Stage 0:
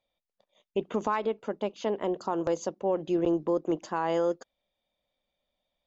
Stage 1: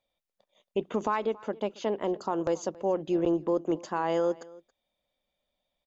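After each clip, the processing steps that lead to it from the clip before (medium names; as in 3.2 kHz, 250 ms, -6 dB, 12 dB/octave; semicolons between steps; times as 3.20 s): delay 276 ms -22 dB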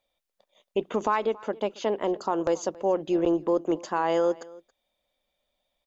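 peaking EQ 140 Hz -5.5 dB 1.8 oct; trim +4 dB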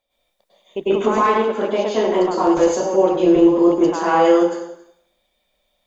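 plate-style reverb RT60 0.7 s, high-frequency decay 0.95×, pre-delay 90 ms, DRR -9.5 dB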